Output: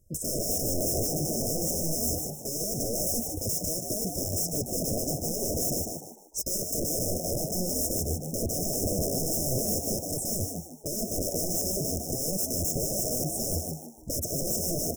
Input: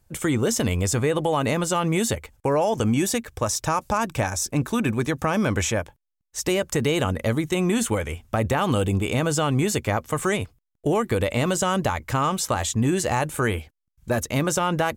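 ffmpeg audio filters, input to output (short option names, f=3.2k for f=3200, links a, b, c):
-filter_complex "[0:a]aeval=exprs='(mod(13.3*val(0)+1,2)-1)/13.3':c=same,afftfilt=real='re*(1-between(b*sr/4096,670,5100))':imag='im*(1-between(b*sr/4096,670,5100))':win_size=4096:overlap=0.75,asplit=5[a][b][c][d][e];[b]adelay=151,afreqshift=76,volume=-5dB[f];[c]adelay=302,afreqshift=152,volume=-14.4dB[g];[d]adelay=453,afreqshift=228,volume=-23.7dB[h];[e]adelay=604,afreqshift=304,volume=-33.1dB[i];[a][f][g][h][i]amix=inputs=5:normalize=0"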